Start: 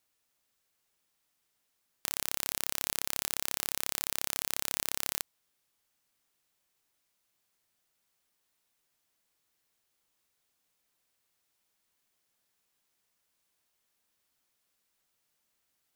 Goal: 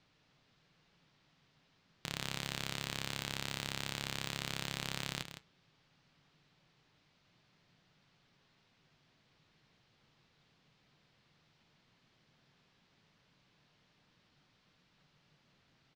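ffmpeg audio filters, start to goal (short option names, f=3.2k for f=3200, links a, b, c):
-af "lowpass=f=4.6k:w=0.5412,lowpass=f=4.6k:w=1.3066,asoftclip=type=hard:threshold=-32.5dB,lowshelf=f=320:g=4,flanger=delay=6.6:depth=2.2:regen=-77:speed=0.14:shape=sinusoidal,equalizer=f=150:t=o:w=1:g=12.5,aecho=1:1:162:0.335,volume=15dB"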